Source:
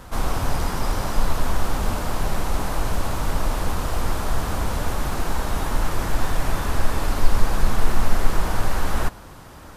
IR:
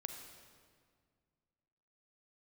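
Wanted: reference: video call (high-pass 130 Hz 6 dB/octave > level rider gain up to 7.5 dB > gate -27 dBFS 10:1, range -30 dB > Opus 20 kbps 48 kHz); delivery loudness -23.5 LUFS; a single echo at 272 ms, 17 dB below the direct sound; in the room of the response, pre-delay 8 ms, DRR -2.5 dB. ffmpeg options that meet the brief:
-filter_complex "[0:a]aecho=1:1:272:0.141,asplit=2[s0][s1];[1:a]atrim=start_sample=2205,adelay=8[s2];[s1][s2]afir=irnorm=-1:irlink=0,volume=1.68[s3];[s0][s3]amix=inputs=2:normalize=0,highpass=f=130:p=1,dynaudnorm=m=2.37,agate=range=0.0316:threshold=0.0447:ratio=10,volume=1.19" -ar 48000 -c:a libopus -b:a 20k

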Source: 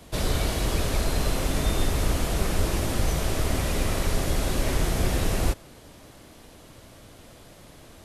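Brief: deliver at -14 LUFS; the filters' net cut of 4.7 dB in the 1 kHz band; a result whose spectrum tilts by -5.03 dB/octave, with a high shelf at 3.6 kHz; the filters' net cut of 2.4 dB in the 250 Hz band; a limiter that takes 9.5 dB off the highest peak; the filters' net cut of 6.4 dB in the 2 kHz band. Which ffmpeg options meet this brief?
-af "equalizer=f=250:t=o:g=-3,equalizer=f=1000:t=o:g=-4.5,equalizer=f=2000:t=o:g=-5.5,highshelf=f=3600:g=-4.5,volume=8.91,alimiter=limit=0.75:level=0:latency=1"

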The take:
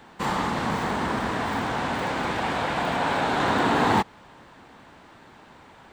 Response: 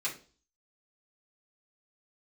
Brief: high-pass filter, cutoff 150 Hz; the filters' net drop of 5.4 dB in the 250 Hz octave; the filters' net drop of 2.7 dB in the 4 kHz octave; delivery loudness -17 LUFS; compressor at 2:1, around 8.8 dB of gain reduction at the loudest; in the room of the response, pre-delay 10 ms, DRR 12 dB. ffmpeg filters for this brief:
-filter_complex "[0:a]highpass=150,equalizer=f=250:t=o:g=-6,equalizer=f=4000:t=o:g=-3.5,acompressor=threshold=0.0178:ratio=2,asplit=2[s0][s1];[1:a]atrim=start_sample=2205,adelay=10[s2];[s1][s2]afir=irnorm=-1:irlink=0,volume=0.15[s3];[s0][s3]amix=inputs=2:normalize=0,volume=6.31"

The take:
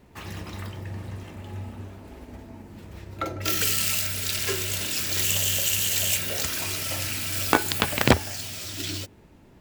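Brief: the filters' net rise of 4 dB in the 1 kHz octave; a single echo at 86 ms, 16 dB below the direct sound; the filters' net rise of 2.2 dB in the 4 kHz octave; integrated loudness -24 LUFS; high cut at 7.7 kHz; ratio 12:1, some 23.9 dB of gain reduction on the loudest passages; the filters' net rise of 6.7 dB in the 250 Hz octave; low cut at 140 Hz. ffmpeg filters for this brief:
-af "highpass=140,lowpass=7700,equalizer=f=250:t=o:g=8.5,equalizer=f=1000:t=o:g=4.5,equalizer=f=4000:t=o:g=3,acompressor=threshold=0.02:ratio=12,aecho=1:1:86:0.158,volume=4.47"

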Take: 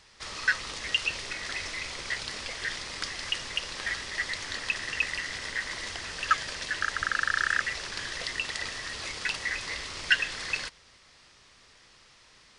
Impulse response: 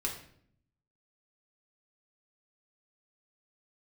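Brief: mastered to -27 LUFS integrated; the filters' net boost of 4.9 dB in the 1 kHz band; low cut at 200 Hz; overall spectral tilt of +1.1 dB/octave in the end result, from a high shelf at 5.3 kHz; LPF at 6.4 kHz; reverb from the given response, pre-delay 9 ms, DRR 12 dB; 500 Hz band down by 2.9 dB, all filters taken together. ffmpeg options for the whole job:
-filter_complex "[0:a]highpass=200,lowpass=6400,equalizer=f=500:t=o:g=-6,equalizer=f=1000:t=o:g=8,highshelf=f=5300:g=4.5,asplit=2[s0][s1];[1:a]atrim=start_sample=2205,adelay=9[s2];[s1][s2]afir=irnorm=-1:irlink=0,volume=0.178[s3];[s0][s3]amix=inputs=2:normalize=0,volume=1.12"

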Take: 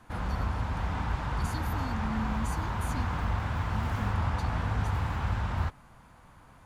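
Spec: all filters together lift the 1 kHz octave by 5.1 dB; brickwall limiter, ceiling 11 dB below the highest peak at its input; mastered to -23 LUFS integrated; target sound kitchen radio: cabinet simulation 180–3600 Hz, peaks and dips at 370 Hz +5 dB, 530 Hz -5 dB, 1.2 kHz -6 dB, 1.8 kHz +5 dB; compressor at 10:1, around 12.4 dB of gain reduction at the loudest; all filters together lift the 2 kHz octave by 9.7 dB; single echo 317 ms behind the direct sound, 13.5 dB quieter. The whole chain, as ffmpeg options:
-af "equalizer=f=1000:t=o:g=6.5,equalizer=f=2000:t=o:g=7.5,acompressor=threshold=0.0158:ratio=10,alimiter=level_in=5.01:limit=0.0631:level=0:latency=1,volume=0.2,highpass=180,equalizer=f=370:t=q:w=4:g=5,equalizer=f=530:t=q:w=4:g=-5,equalizer=f=1200:t=q:w=4:g=-6,equalizer=f=1800:t=q:w=4:g=5,lowpass=f=3600:w=0.5412,lowpass=f=3600:w=1.3066,aecho=1:1:317:0.211,volume=18.8"

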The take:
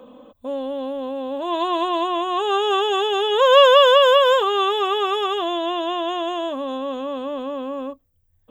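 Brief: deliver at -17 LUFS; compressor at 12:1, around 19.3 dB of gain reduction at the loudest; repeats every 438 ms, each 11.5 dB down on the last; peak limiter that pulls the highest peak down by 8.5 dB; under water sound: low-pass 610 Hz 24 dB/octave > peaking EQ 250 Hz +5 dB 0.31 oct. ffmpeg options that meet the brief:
-af "acompressor=threshold=0.0447:ratio=12,alimiter=level_in=1.68:limit=0.0631:level=0:latency=1,volume=0.596,lowpass=f=610:w=0.5412,lowpass=f=610:w=1.3066,equalizer=f=250:t=o:w=0.31:g=5,aecho=1:1:438|876|1314:0.266|0.0718|0.0194,volume=10.6"

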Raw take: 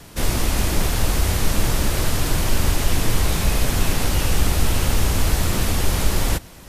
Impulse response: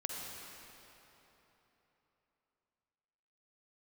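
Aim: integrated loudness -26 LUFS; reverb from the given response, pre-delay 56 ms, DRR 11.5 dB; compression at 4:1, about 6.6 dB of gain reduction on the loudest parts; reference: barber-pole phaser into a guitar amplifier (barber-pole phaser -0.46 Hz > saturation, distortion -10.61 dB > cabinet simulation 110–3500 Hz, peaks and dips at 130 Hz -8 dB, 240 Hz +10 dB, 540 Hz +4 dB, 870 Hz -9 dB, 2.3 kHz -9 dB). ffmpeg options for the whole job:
-filter_complex "[0:a]acompressor=threshold=0.112:ratio=4,asplit=2[s0][s1];[1:a]atrim=start_sample=2205,adelay=56[s2];[s1][s2]afir=irnorm=-1:irlink=0,volume=0.224[s3];[s0][s3]amix=inputs=2:normalize=0,asplit=2[s4][s5];[s5]afreqshift=-0.46[s6];[s4][s6]amix=inputs=2:normalize=1,asoftclip=threshold=0.0531,highpass=110,equalizer=f=130:t=q:w=4:g=-8,equalizer=f=240:t=q:w=4:g=10,equalizer=f=540:t=q:w=4:g=4,equalizer=f=870:t=q:w=4:g=-9,equalizer=f=2300:t=q:w=4:g=-9,lowpass=f=3500:w=0.5412,lowpass=f=3500:w=1.3066,volume=3.35"

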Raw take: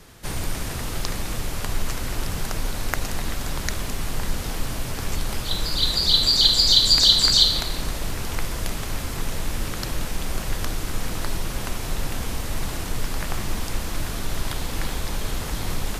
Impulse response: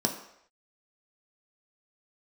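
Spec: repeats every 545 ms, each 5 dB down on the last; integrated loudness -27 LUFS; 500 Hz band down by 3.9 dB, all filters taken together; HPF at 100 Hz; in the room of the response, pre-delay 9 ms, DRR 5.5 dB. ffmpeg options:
-filter_complex "[0:a]highpass=100,equalizer=f=500:t=o:g=-5,aecho=1:1:545|1090|1635|2180|2725|3270|3815:0.562|0.315|0.176|0.0988|0.0553|0.031|0.0173,asplit=2[s0][s1];[1:a]atrim=start_sample=2205,adelay=9[s2];[s1][s2]afir=irnorm=-1:irlink=0,volume=0.211[s3];[s0][s3]amix=inputs=2:normalize=0,volume=0.501"

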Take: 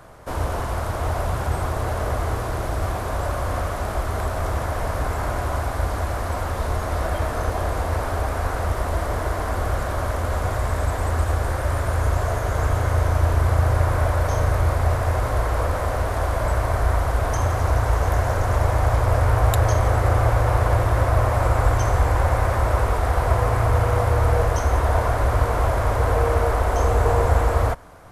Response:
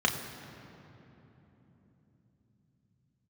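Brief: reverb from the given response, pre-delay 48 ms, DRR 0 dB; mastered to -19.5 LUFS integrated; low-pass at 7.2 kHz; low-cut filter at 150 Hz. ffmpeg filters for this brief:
-filter_complex "[0:a]highpass=150,lowpass=7200,asplit=2[s0][s1];[1:a]atrim=start_sample=2205,adelay=48[s2];[s1][s2]afir=irnorm=-1:irlink=0,volume=0.266[s3];[s0][s3]amix=inputs=2:normalize=0,volume=1.41"

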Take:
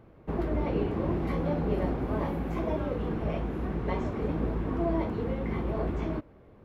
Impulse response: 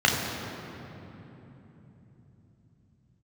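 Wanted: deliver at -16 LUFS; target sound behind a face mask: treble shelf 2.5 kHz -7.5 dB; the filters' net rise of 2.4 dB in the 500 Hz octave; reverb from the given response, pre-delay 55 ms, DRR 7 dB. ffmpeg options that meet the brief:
-filter_complex "[0:a]equalizer=f=500:t=o:g=3.5,asplit=2[s0][s1];[1:a]atrim=start_sample=2205,adelay=55[s2];[s1][s2]afir=irnorm=-1:irlink=0,volume=0.0562[s3];[s0][s3]amix=inputs=2:normalize=0,highshelf=f=2500:g=-7.5,volume=4.22"

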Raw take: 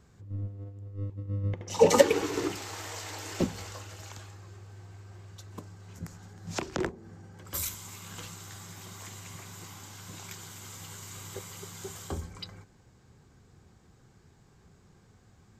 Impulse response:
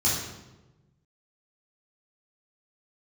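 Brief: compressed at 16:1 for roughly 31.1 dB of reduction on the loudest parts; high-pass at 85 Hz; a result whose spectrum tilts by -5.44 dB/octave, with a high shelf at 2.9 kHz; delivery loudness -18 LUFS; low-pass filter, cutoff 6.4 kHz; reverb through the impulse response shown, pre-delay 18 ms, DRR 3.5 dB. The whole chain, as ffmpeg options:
-filter_complex "[0:a]highpass=85,lowpass=6400,highshelf=f=2900:g=-4.5,acompressor=threshold=0.00501:ratio=16,asplit=2[s0][s1];[1:a]atrim=start_sample=2205,adelay=18[s2];[s1][s2]afir=irnorm=-1:irlink=0,volume=0.178[s3];[s0][s3]amix=inputs=2:normalize=0,volume=17.8"

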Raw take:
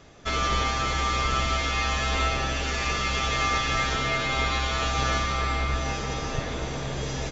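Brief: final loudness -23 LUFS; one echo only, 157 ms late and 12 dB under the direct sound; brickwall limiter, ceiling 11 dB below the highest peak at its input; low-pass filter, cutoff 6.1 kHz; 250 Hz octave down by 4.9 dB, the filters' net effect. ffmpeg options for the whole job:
-af "lowpass=6100,equalizer=f=250:t=o:g=-7,alimiter=limit=0.0631:level=0:latency=1,aecho=1:1:157:0.251,volume=2.99"

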